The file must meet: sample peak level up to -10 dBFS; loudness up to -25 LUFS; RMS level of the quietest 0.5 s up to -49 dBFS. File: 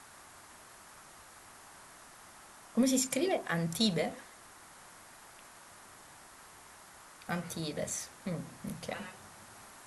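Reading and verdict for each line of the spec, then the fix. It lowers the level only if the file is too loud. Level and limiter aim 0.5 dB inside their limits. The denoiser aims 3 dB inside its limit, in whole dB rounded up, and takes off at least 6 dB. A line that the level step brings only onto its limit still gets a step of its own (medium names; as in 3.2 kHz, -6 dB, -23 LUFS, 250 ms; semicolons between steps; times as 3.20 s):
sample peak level -16.0 dBFS: pass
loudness -34.0 LUFS: pass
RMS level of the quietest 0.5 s -55 dBFS: pass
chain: none needed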